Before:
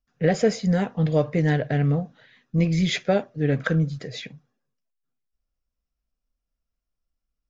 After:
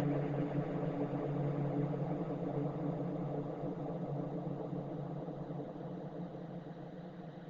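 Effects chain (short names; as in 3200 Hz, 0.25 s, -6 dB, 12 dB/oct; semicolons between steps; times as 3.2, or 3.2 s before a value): Paulstretch 39×, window 0.50 s, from 1.94; harmonic-percussive split harmonic -15 dB; gain -1 dB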